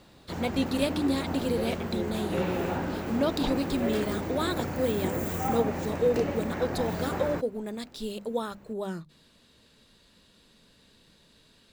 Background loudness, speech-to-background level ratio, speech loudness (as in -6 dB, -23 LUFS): -32.5 LUFS, 1.5 dB, -31.0 LUFS